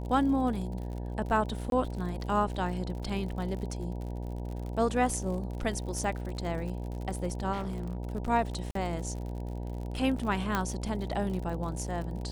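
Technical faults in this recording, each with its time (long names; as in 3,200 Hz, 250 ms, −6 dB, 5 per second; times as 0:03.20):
mains buzz 60 Hz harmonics 16 −36 dBFS
surface crackle 57 per second −37 dBFS
0:01.70–0:01.72: drop-out 22 ms
0:07.52–0:07.97: clipping −30.5 dBFS
0:08.71–0:08.75: drop-out 43 ms
0:10.55: click −14 dBFS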